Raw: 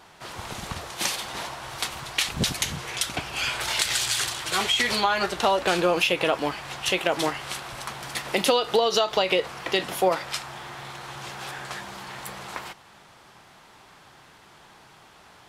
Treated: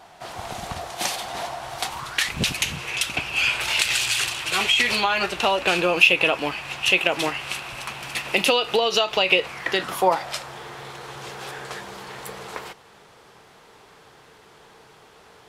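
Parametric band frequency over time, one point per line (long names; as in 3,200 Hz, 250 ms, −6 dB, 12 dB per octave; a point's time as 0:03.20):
parametric band +11.5 dB 0.36 octaves
0:01.83 710 Hz
0:02.39 2,600 Hz
0:09.45 2,600 Hz
0:10.53 450 Hz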